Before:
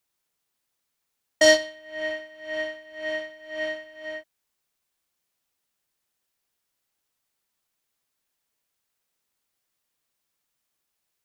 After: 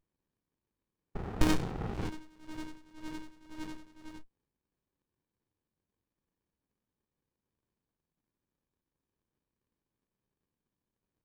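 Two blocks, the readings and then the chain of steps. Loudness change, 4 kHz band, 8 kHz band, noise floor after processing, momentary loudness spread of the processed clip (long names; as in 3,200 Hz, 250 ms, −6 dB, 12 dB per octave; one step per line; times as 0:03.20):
−12.5 dB, −17.5 dB, −15.0 dB, below −85 dBFS, 21 LU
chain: sound drawn into the spectrogram noise, 0:01.15–0:02.10, 360–830 Hz −31 dBFS
windowed peak hold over 65 samples
level −2.5 dB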